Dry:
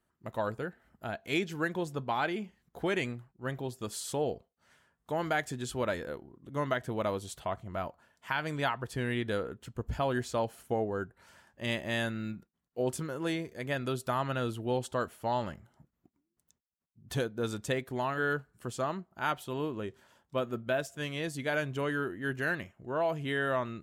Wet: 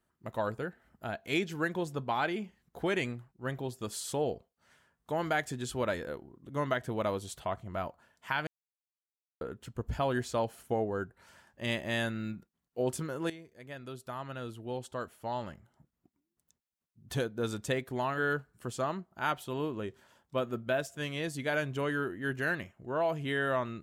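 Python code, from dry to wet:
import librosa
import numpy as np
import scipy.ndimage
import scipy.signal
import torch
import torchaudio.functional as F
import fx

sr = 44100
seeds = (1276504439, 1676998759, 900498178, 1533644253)

y = fx.edit(x, sr, fx.silence(start_s=8.47, length_s=0.94),
    fx.fade_in_from(start_s=13.3, length_s=4.16, floor_db=-14.5), tone=tone)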